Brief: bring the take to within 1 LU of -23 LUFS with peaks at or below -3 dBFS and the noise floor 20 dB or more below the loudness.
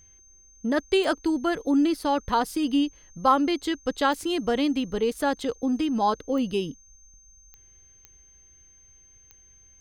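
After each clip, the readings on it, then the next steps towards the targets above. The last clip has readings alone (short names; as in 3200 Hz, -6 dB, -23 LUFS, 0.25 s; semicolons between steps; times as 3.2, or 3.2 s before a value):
clicks 6; steady tone 6300 Hz; tone level -53 dBFS; loudness -25.5 LUFS; peak -8.5 dBFS; loudness target -23.0 LUFS
-> de-click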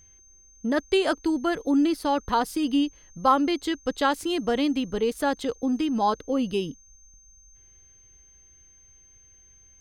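clicks 1; steady tone 6300 Hz; tone level -53 dBFS
-> notch 6300 Hz, Q 30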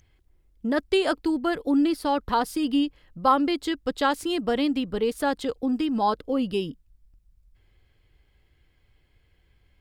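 steady tone none; loudness -25.5 LUFS; peak -8.5 dBFS; loudness target -23.0 LUFS
-> gain +2.5 dB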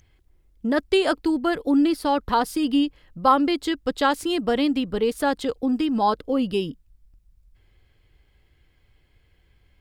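loudness -23.0 LUFS; peak -6.0 dBFS; noise floor -62 dBFS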